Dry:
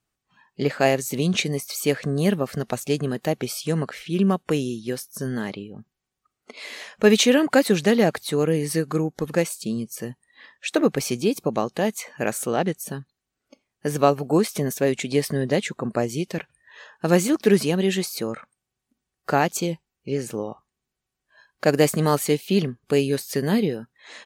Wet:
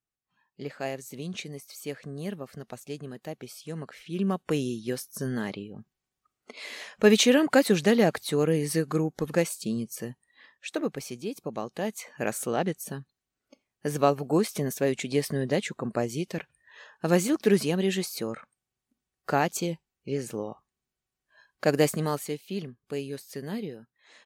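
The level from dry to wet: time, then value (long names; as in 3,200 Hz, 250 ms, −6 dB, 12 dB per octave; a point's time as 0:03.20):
0:03.64 −14 dB
0:04.66 −3 dB
0:09.92 −3 dB
0:11.20 −13 dB
0:12.27 −4.5 dB
0:21.84 −4.5 dB
0:22.38 −13 dB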